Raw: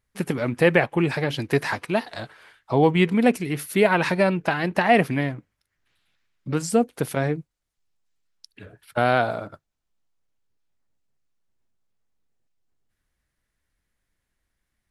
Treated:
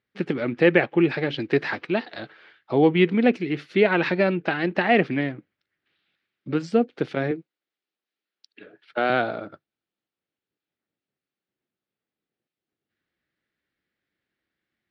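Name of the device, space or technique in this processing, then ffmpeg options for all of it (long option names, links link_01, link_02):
kitchen radio: -filter_complex "[0:a]asettb=1/sr,asplit=3[link_01][link_02][link_03];[link_01]atrim=end=7.314[link_04];[link_02]atrim=start=7.31:end=9.1,asetpts=PTS-STARTPTS,afade=type=in:duration=0.004:curve=qsin,afade=type=out:start_time=1.786:duration=0.004:curve=qsin,highpass=260[link_05];[link_03]atrim=start=9.096[link_06];[link_04][link_05]acrossfade=duration=0.004:curve1=hsin:curve2=qsin[link_07];[link_07][link_06]acrossfade=duration=0.004:curve1=qsin:curve2=hsin,highpass=170,equalizer=frequency=340:width_type=q:width=4:gain=5,equalizer=frequency=670:width_type=q:width=4:gain=-3,equalizer=frequency=990:width_type=q:width=4:gain=-8,lowpass=frequency=4200:width=0.5412,lowpass=frequency=4200:width=1.3066"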